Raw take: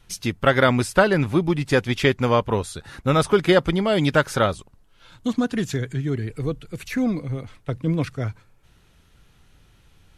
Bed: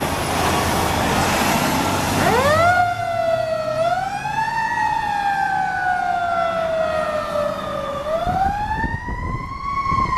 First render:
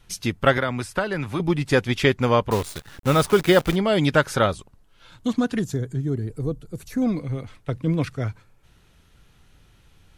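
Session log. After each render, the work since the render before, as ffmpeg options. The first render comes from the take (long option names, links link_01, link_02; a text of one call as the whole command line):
ffmpeg -i in.wav -filter_complex "[0:a]asettb=1/sr,asplit=3[link_01][link_02][link_03];[link_01]atrim=end=0.574[link_04];[link_02]atrim=start=0.57:end=1.4,asetpts=PTS-STARTPTS,afade=type=in:duration=0.004:curve=qsin,afade=type=out:start_time=0.826:duration=0.004:curve=qsin,acrossover=split=89|780|2100[link_05][link_06][link_07][link_08];[link_05]acompressor=threshold=-41dB:ratio=3[link_09];[link_06]acompressor=threshold=-28dB:ratio=3[link_10];[link_07]acompressor=threshold=-28dB:ratio=3[link_11];[link_08]acompressor=threshold=-39dB:ratio=3[link_12];[link_09][link_10][link_11][link_12]amix=inputs=4:normalize=0[link_13];[link_03]atrim=start=1.396[link_14];[link_04][link_13]acrossfade=duration=0.004:curve1=hsin:curve2=qsin[link_15];[link_15][link_14]acrossfade=duration=0.004:curve1=qsin:curve2=hsin,asettb=1/sr,asplit=3[link_16][link_17][link_18];[link_16]atrim=end=2.514[link_19];[link_17]atrim=start=2.51:end=3.76,asetpts=PTS-STARTPTS,afade=type=in:duration=0.004:curve=qsin,afade=type=out:start_time=1.246:duration=0.004:curve=qsin,acrusher=bits=6:dc=4:mix=0:aa=0.000001[link_20];[link_18]atrim=start=3.756[link_21];[link_19][link_20]acrossfade=duration=0.004:curve1=hsin:curve2=qsin[link_22];[link_22][link_21]acrossfade=duration=0.004:curve1=qsin:curve2=hsin,asettb=1/sr,asplit=3[link_23][link_24][link_25];[link_23]atrim=end=5.594[link_26];[link_24]atrim=start=5.59:end=7.02,asetpts=PTS-STARTPTS,afade=type=in:duration=0.004:curve=qsin,afade=type=out:start_time=1.426:duration=0.004:curve=qsin,equalizer=frequency=2400:width=0.81:gain=-15[link_27];[link_25]atrim=start=7.016[link_28];[link_26][link_27]acrossfade=duration=0.004:curve1=hsin:curve2=qsin[link_29];[link_29][link_28]acrossfade=duration=0.004:curve1=qsin:curve2=hsin" out.wav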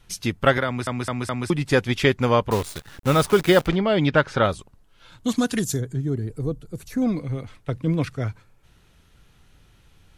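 ffmpeg -i in.wav -filter_complex "[0:a]asettb=1/sr,asplit=3[link_01][link_02][link_03];[link_01]atrim=end=3.674[link_04];[link_02]atrim=start=3.67:end=4.45,asetpts=PTS-STARTPTS,afade=type=in:duration=0.004:curve=qsin,afade=type=out:start_time=0.776:duration=0.004:curve=qsin,lowpass=3900[link_05];[link_03]atrim=start=4.446[link_06];[link_04][link_05]acrossfade=duration=0.004:curve1=hsin:curve2=qsin[link_07];[link_07][link_06]acrossfade=duration=0.004:curve1=qsin:curve2=hsin,asplit=3[link_08][link_09][link_10];[link_08]afade=type=out:start_time=5.27:duration=0.02[link_11];[link_09]equalizer=frequency=11000:width_type=o:width=2.3:gain=14,afade=type=in:start_time=5.27:duration=0.02,afade=type=out:start_time=5.79:duration=0.02[link_12];[link_10]afade=type=in:start_time=5.79:duration=0.02[link_13];[link_11][link_12][link_13]amix=inputs=3:normalize=0,asplit=5[link_14][link_15][link_16][link_17][link_18];[link_14]atrim=end=0.872[link_19];[link_15]atrim=start=0.658:end=0.872[link_20];[link_16]atrim=start=0.658:end=0.872[link_21];[link_17]atrim=start=0.658:end=0.872[link_22];[link_18]atrim=start=1.498[link_23];[link_19][link_20]acrossfade=duration=0.004:curve1=hsin:curve2=hsin[link_24];[link_24][link_21]acrossfade=duration=0.004:curve1=hsin:curve2=hsin[link_25];[link_25][link_22]acrossfade=duration=0.004:curve1=hsin:curve2=hsin[link_26];[link_26][link_23]acrossfade=duration=0.004:curve1=hsin:curve2=hsin" out.wav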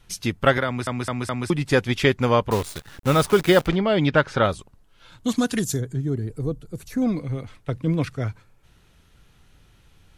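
ffmpeg -i in.wav -af anull out.wav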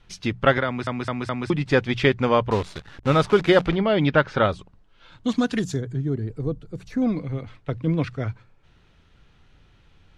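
ffmpeg -i in.wav -af "lowpass=4300,bandreject=frequency=60:width_type=h:width=6,bandreject=frequency=120:width_type=h:width=6,bandreject=frequency=180:width_type=h:width=6" out.wav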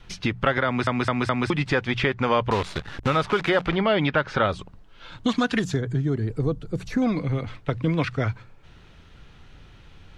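ffmpeg -i in.wav -filter_complex "[0:a]acrossover=split=760|1700|3600[link_01][link_02][link_03][link_04];[link_01]acompressor=threshold=-29dB:ratio=4[link_05];[link_02]acompressor=threshold=-29dB:ratio=4[link_06];[link_03]acompressor=threshold=-36dB:ratio=4[link_07];[link_04]acompressor=threshold=-50dB:ratio=4[link_08];[link_05][link_06][link_07][link_08]amix=inputs=4:normalize=0,asplit=2[link_09][link_10];[link_10]alimiter=limit=-20dB:level=0:latency=1:release=92,volume=2.5dB[link_11];[link_09][link_11]amix=inputs=2:normalize=0" out.wav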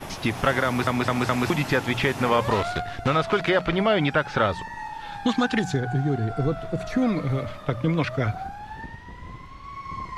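ffmpeg -i in.wav -i bed.wav -filter_complex "[1:a]volume=-15.5dB[link_01];[0:a][link_01]amix=inputs=2:normalize=0" out.wav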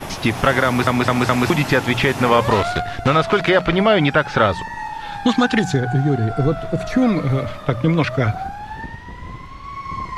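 ffmpeg -i in.wav -af "volume=6.5dB,alimiter=limit=-2dB:level=0:latency=1" out.wav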